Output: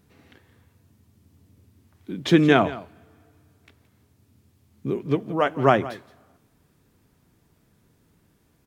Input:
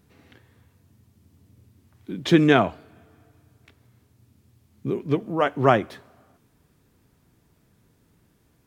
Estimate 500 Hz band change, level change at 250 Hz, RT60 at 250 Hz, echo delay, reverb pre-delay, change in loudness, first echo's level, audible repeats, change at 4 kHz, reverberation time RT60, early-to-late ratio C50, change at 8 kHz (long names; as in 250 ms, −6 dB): 0.0 dB, 0.0 dB, no reverb audible, 171 ms, no reverb audible, 0.0 dB, −17.0 dB, 1, 0.0 dB, no reverb audible, no reverb audible, can't be measured